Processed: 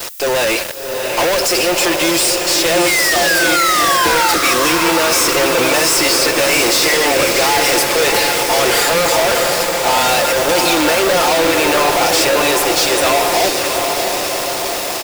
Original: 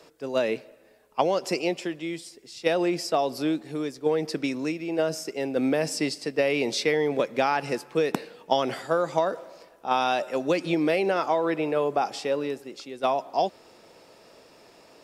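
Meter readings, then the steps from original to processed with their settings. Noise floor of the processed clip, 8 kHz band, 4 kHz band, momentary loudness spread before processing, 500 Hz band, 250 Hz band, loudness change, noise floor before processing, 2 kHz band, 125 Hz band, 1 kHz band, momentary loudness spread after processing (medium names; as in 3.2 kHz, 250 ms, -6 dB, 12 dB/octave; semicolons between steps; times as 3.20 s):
-21 dBFS, +26.0 dB, +21.5 dB, 8 LU, +10.5 dB, +8.5 dB, +14.0 dB, -55 dBFS, +19.0 dB, +8.5 dB, +13.5 dB, 5 LU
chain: high-pass 570 Hz 12 dB/octave; treble shelf 5.7 kHz +12 dB; comb 5.7 ms, depth 75%; waveshaping leveller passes 2; in parallel at -1 dB: gain riding; on the sum: painted sound fall, 2.86–4.34 s, 850–2200 Hz -14 dBFS; fuzz box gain 44 dB, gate -42 dBFS; added noise violet -33 dBFS; on a send: echo that smears into a reverb 692 ms, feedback 66%, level -4.5 dB; on the sum: trim -1 dB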